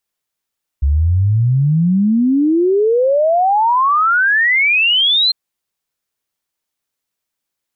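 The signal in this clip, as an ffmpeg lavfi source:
ffmpeg -f lavfi -i "aevalsrc='0.316*clip(min(t,4.5-t)/0.01,0,1)*sin(2*PI*67*4.5/log(4200/67)*(exp(log(4200/67)*t/4.5)-1))':duration=4.5:sample_rate=44100" out.wav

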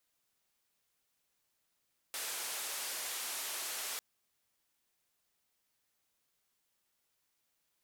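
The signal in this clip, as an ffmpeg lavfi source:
ffmpeg -f lavfi -i "anoisesrc=color=white:duration=1.85:sample_rate=44100:seed=1,highpass=frequency=480,lowpass=frequency=13000,volume=-32.7dB" out.wav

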